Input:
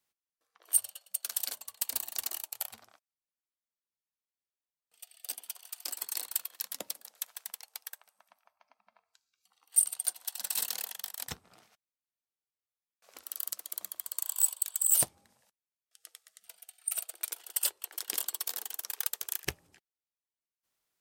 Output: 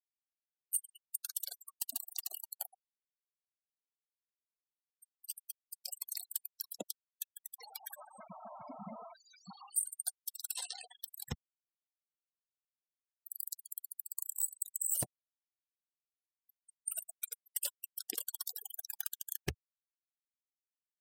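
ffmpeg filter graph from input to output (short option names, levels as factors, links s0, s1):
-filter_complex "[0:a]asettb=1/sr,asplit=3[s0][s1][s2];[s0]atrim=end=7.564[s3];[s1]atrim=start=7.56:end=9.9,asetpts=PTS-STARTPTS,afade=t=in:d=0.004:c=qsin,afade=t=out:st=2.336:d=0.004:c=qsin,aeval=exprs='val(0)+0.5*0.0112*sgn(val(0))':c=same,equalizer=f=150:w=1.5:g=5.5[s4];[s2]atrim=start=9.896[s5];[s3][s4]acrossfade=d=0.004:c1=hsin:c2=qsin[s6];[s6][s5]acrossfade=d=0.004:c1=qsin:c2=hsin,asettb=1/sr,asplit=3[s7][s8][s9];[s7]atrim=end=10.544[s10];[s8]atrim=start=10.54:end=11,asetpts=PTS-STARTPTS,afade=t=in:d=0.004:c=qsin,afade=t=out:st=0.456:d=0.004:c=qsin,equalizer=f=8700:w=5.1:g=4.5,asplit=2[s11][s12];[s12]adelay=15,volume=0.708[s13];[s11][s13]amix=inputs=2:normalize=0,atrim=end_sample=20286,adynamicsmooth=sensitivity=1:basefreq=7700[s14];[s9]atrim=start=10.996[s15];[s10][s14]acrossfade=d=0.004:c1=hsin:c2=qsin[s16];[s16][s15]acrossfade=d=0.004:c1=qsin:c2=hsin,afftfilt=real='re*gte(hypot(re,im),0.0158)':imag='im*gte(hypot(re,im),0.0158)':win_size=1024:overlap=0.75,lowshelf=f=450:g=11.5,acompressor=threshold=0.0251:ratio=2,volume=0.708"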